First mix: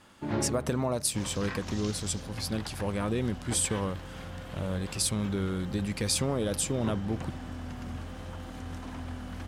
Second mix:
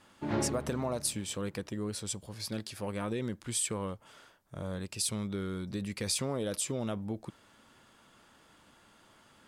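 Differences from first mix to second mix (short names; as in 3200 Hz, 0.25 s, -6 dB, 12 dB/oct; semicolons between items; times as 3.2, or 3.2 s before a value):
speech -3.5 dB; second sound: muted; master: add low shelf 140 Hz -4.5 dB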